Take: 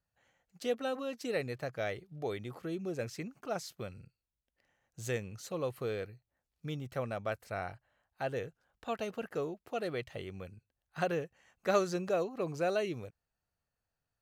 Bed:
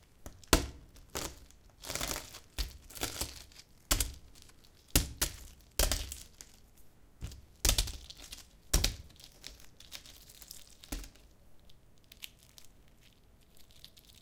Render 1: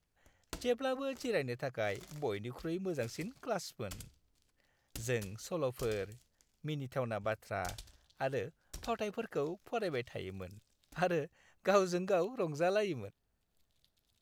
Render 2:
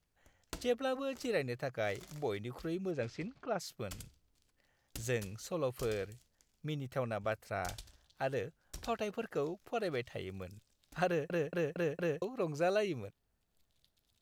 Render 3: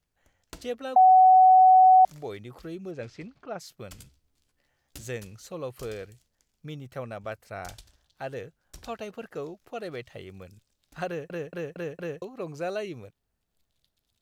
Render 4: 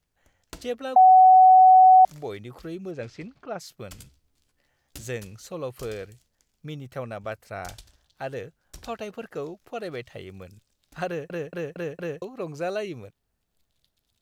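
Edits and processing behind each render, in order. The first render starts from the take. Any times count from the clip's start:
add bed -19 dB
2.90–3.59 s: low-pass 4.6 kHz -> 2.7 kHz; 11.07 s: stutter in place 0.23 s, 5 plays
0.96–2.05 s: bleep 748 Hz -12 dBFS; 4.00–5.05 s: doubling 14 ms -4.5 dB
trim +2.5 dB

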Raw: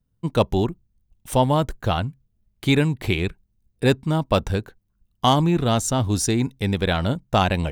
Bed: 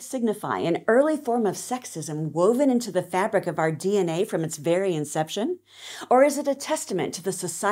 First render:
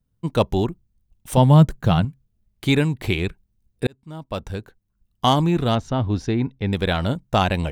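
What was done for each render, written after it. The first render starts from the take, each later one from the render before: 1.37–2.05 s: peaking EQ 160 Hz +13 dB; 3.87–5.25 s: fade in; 5.75–6.73 s: distance through air 270 m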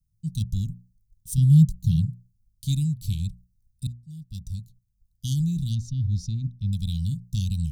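inverse Chebyshev band-stop 440–1800 Hz, stop band 60 dB; hum notches 60/120/180/240 Hz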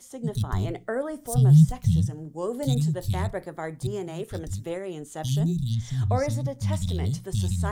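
add bed -10 dB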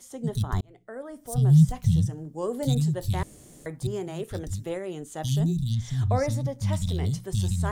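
0.61–1.75 s: fade in; 3.23–3.66 s: room tone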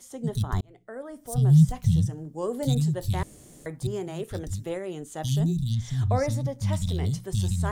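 no audible change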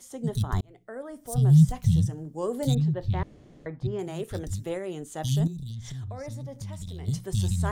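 2.75–3.99 s: distance through air 260 m; 5.47–7.08 s: compression 12:1, threshold -33 dBFS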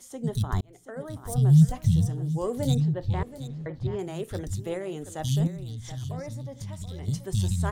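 delay 728 ms -13 dB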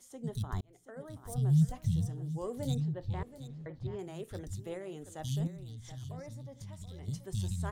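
trim -9 dB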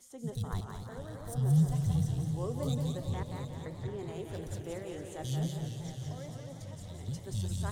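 thinning echo 176 ms, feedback 44%, high-pass 410 Hz, level -4 dB; modulated delay 225 ms, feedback 72%, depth 190 cents, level -8.5 dB

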